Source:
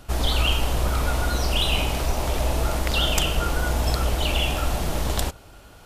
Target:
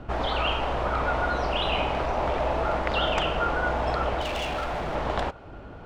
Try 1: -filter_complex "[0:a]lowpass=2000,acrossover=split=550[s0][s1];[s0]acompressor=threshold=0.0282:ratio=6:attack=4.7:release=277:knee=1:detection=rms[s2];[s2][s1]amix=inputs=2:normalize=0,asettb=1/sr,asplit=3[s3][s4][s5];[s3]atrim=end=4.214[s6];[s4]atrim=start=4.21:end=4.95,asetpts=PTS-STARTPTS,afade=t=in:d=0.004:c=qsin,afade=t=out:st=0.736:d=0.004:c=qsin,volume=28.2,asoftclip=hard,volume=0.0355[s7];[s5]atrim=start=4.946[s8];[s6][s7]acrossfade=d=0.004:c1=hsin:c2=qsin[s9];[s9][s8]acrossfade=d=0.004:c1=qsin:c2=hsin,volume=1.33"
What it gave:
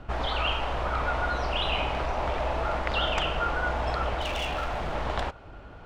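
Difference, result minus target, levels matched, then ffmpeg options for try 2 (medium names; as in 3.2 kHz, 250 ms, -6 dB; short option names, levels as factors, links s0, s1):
250 Hz band -2.5 dB
-filter_complex "[0:a]lowpass=2000,equalizer=f=260:w=0.37:g=6.5,acrossover=split=550[s0][s1];[s0]acompressor=threshold=0.0282:ratio=6:attack=4.7:release=277:knee=1:detection=rms[s2];[s2][s1]amix=inputs=2:normalize=0,asettb=1/sr,asplit=3[s3][s4][s5];[s3]atrim=end=4.214[s6];[s4]atrim=start=4.21:end=4.95,asetpts=PTS-STARTPTS,afade=t=in:d=0.004:c=qsin,afade=t=out:st=0.736:d=0.004:c=qsin,volume=28.2,asoftclip=hard,volume=0.0355[s7];[s5]atrim=start=4.946[s8];[s6][s7]acrossfade=d=0.004:c1=hsin:c2=qsin[s9];[s9][s8]acrossfade=d=0.004:c1=qsin:c2=hsin,volume=1.33"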